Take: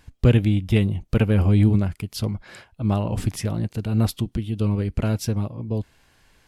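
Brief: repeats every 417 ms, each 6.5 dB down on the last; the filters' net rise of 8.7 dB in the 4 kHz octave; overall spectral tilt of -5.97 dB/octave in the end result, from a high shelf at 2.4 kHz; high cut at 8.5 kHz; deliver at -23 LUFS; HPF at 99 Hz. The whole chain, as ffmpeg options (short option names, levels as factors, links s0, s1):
-af "highpass=99,lowpass=8500,highshelf=f=2400:g=4.5,equalizer=f=4000:t=o:g=7.5,aecho=1:1:417|834|1251|1668|2085|2502:0.473|0.222|0.105|0.0491|0.0231|0.0109,volume=0.944"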